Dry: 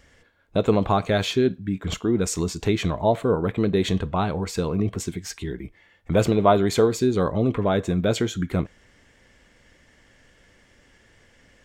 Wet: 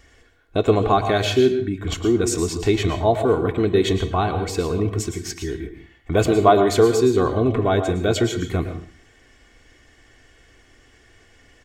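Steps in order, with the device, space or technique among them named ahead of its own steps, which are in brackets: microphone above a desk (comb 2.7 ms, depth 55%; reverberation RT60 0.45 s, pre-delay 104 ms, DRR 7.5 dB); trim +1.5 dB

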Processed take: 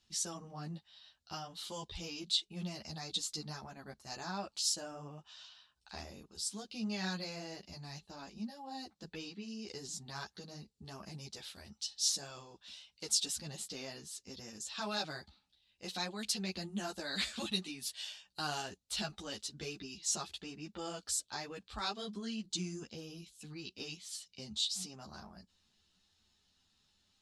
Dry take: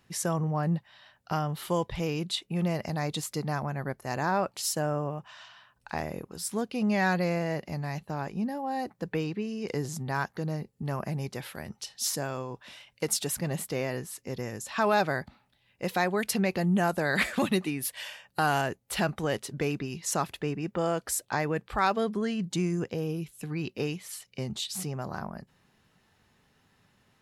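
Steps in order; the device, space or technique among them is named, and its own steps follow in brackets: string-machine ensemble chorus (three-phase chorus; low-pass 6.9 kHz 12 dB/octave); ten-band graphic EQ 125 Hz -12 dB, 250 Hz -5 dB, 500 Hz -11 dB, 1 kHz -7 dB, 2 kHz -11 dB, 4 kHz +8 dB, 8 kHz +5 dB; trim -1 dB

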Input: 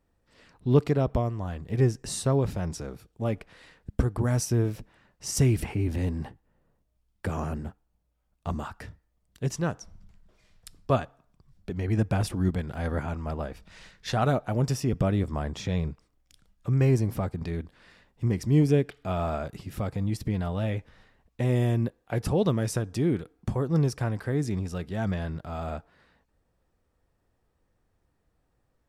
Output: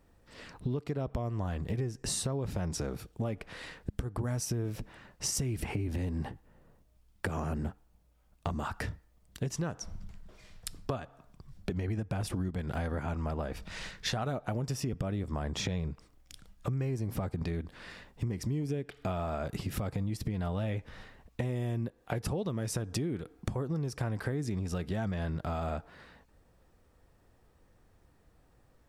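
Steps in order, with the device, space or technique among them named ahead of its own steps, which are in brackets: serial compression, peaks first (compression, threshold -34 dBFS, peak gain reduction 18.5 dB; compression 2.5:1, threshold -40 dBFS, peak gain reduction 8 dB); trim +8 dB

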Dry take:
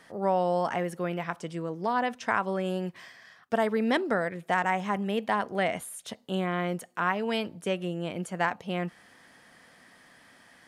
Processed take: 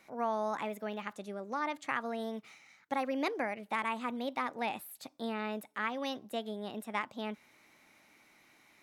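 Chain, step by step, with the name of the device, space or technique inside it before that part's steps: nightcore (tape speed +21%); trim -7.5 dB

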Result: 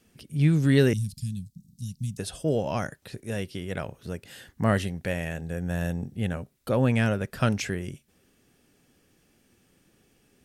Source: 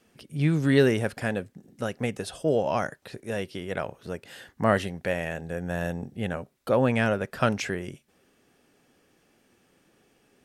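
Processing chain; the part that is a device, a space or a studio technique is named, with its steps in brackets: 0.93–2.18 s: Chebyshev band-stop 180–4200 Hz, order 3; smiley-face EQ (bass shelf 150 Hz +8 dB; peaking EQ 800 Hz -5 dB 2.4 oct; treble shelf 7.5 kHz +5 dB)

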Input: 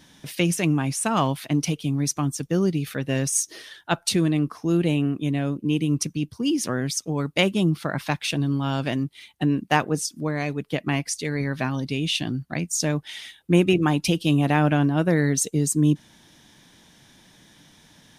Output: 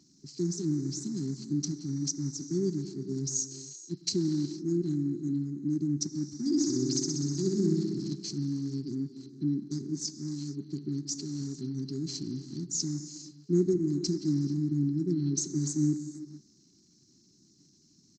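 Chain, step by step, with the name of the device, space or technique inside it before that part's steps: 6.38–8.14 s: flutter echo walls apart 10.8 m, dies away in 1.3 s; gated-style reverb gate 490 ms flat, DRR 10 dB; FFT band-reject 410–4000 Hz; Bluetooth headset (high-pass 220 Hz 6 dB/octave; resampled via 16 kHz; trim -5 dB; SBC 64 kbps 32 kHz)

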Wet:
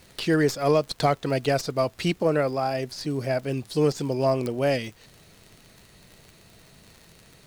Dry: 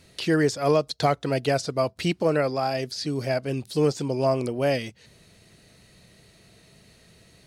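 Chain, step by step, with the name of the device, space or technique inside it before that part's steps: 2.19–3.39 s: peaking EQ 4.3 kHz -4.5 dB 1.5 oct; record under a worn stylus (tracing distortion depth 0.034 ms; crackle 60 per s -37 dBFS; pink noise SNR 32 dB)

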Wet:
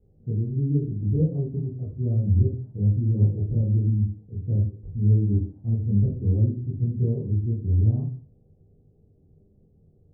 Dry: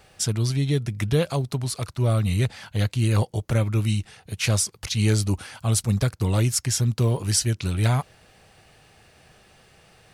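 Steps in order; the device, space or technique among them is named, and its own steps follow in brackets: next room (low-pass 350 Hz 24 dB/octave; reverberation RT60 0.45 s, pre-delay 15 ms, DRR -7 dB); trim -6.5 dB

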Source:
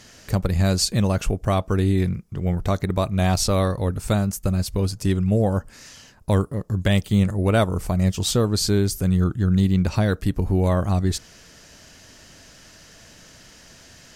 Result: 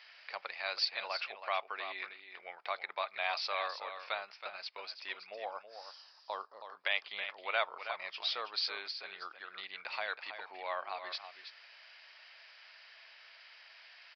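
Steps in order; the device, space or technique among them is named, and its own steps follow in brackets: 5.34–6.64 s: FFT filter 1.2 kHz 0 dB, 2.2 kHz -17 dB, 6.6 kHz +14 dB; musical greeting card (resampled via 11.025 kHz; high-pass 760 Hz 24 dB/octave; peaking EQ 2.3 kHz +8.5 dB 0.5 oct); delay 323 ms -9.5 dB; trim -8 dB

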